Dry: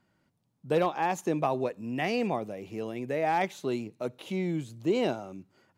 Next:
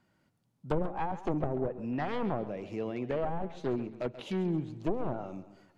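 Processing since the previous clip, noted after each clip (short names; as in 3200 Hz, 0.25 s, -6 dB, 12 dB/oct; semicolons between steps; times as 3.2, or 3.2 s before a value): one-sided fold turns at -28.5 dBFS; treble ducked by the level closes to 490 Hz, closed at -24.5 dBFS; warbling echo 0.135 s, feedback 41%, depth 102 cents, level -14 dB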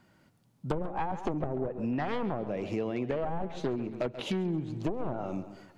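compressor, threshold -36 dBFS, peak gain reduction 12 dB; gain +8 dB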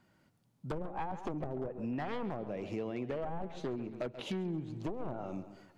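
overloaded stage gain 23 dB; gain -5.5 dB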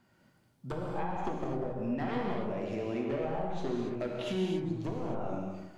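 non-linear reverb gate 0.3 s flat, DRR -2 dB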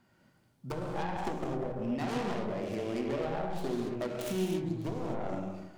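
tracing distortion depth 0.41 ms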